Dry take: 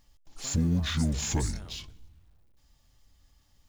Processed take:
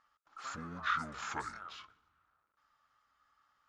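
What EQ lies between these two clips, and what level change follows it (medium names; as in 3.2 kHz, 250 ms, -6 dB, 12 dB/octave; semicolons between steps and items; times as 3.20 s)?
band-pass filter 1.3 kHz, Q 9.4; +16.0 dB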